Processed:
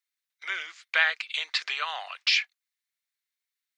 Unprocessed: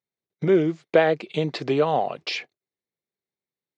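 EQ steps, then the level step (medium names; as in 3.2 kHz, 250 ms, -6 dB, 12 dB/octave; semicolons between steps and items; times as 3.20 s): high-pass 1.4 kHz 24 dB/octave; +6.5 dB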